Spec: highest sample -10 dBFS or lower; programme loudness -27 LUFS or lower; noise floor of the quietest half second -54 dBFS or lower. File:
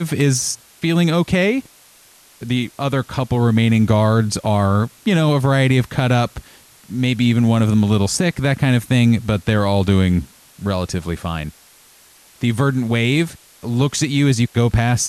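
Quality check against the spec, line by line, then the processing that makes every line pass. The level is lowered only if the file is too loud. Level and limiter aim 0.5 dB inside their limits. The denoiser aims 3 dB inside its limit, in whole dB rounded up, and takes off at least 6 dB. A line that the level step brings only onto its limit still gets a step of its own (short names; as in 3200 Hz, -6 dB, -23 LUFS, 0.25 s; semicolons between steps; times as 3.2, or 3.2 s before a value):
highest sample -4.5 dBFS: fail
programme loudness -17.5 LUFS: fail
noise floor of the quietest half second -49 dBFS: fail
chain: gain -10 dB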